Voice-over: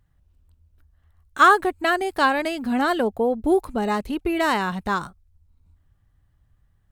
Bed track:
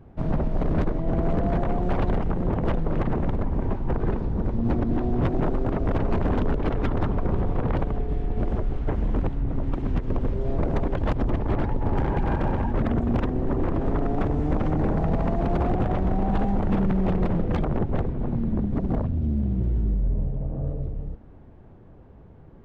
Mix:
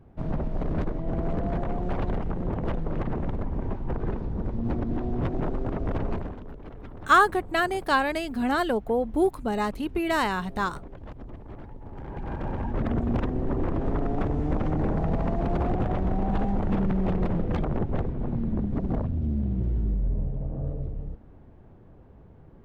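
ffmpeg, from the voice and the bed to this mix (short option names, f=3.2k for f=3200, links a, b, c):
-filter_complex "[0:a]adelay=5700,volume=-3.5dB[a];[1:a]volume=10.5dB,afade=t=out:st=6.08:d=0.27:silence=0.223872,afade=t=in:st=11.95:d=1.01:silence=0.177828[b];[a][b]amix=inputs=2:normalize=0"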